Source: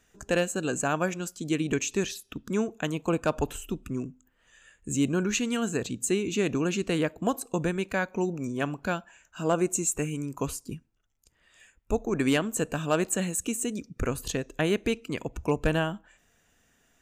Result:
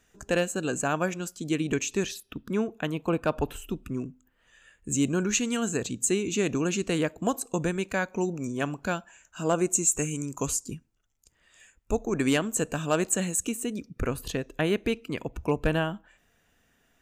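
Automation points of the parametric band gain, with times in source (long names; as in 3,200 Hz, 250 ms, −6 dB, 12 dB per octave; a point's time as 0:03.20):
parametric band 7,000 Hz 0.72 octaves
−0.5 dB
from 0:02.20 −11 dB
from 0:03.56 −4.5 dB
from 0:04.92 +5 dB
from 0:09.93 +12.5 dB
from 0:10.71 +4 dB
from 0:13.49 −6.5 dB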